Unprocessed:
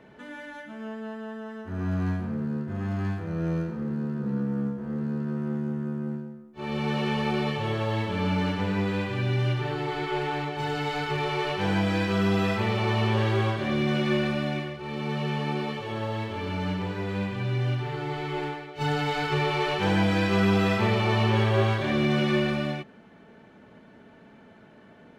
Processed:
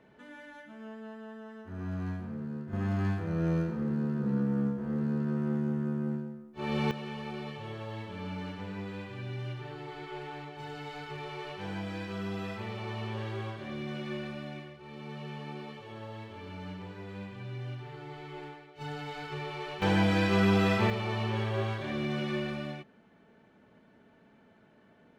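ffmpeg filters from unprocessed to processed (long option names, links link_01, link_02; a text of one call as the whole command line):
ffmpeg -i in.wav -af "asetnsamples=nb_out_samples=441:pad=0,asendcmd='2.73 volume volume -1dB;6.91 volume volume -12.5dB;19.82 volume volume -2.5dB;20.9 volume volume -9dB',volume=-8dB" out.wav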